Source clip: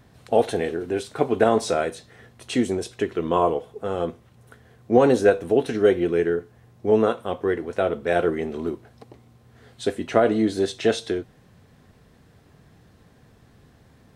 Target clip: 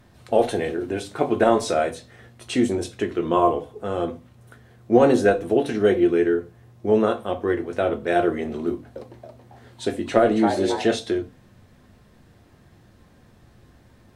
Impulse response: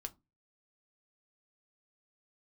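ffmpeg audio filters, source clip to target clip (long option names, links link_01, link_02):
-filter_complex "[0:a]asettb=1/sr,asplit=3[link_01][link_02][link_03];[link_01]atrim=end=8.684[link_04];[link_02]atrim=start=8.68:end=10.84,asetpts=PTS-STARTPTS,afade=type=in:duration=0.004:curve=qsin,afade=type=out:start_time=2.156:duration=0.004:curve=qsin,asplit=6[link_05][link_06][link_07][link_08][link_09][link_10];[link_06]adelay=275,afreqshift=140,volume=-7.5dB[link_11];[link_07]adelay=550,afreqshift=280,volume=-14.4dB[link_12];[link_08]adelay=825,afreqshift=420,volume=-21.4dB[link_13];[link_09]adelay=1100,afreqshift=560,volume=-28.3dB[link_14];[link_10]adelay=1375,afreqshift=700,volume=-35.2dB[link_15];[link_05][link_11][link_12][link_13][link_14][link_15]amix=inputs=6:normalize=0,atrim=end_sample=95256[link_16];[link_03]atrim=start=10.836[link_17];[link_04][link_16]acrossfade=duration=0.004:curve1=hsin:curve2=qsin[link_18];[link_18][link_17]acrossfade=duration=0.004:curve1=qsin:curve2=hsin[link_19];[1:a]atrim=start_sample=2205,asetrate=35721,aresample=44100[link_20];[link_19][link_20]afir=irnorm=-1:irlink=0,volume=3dB"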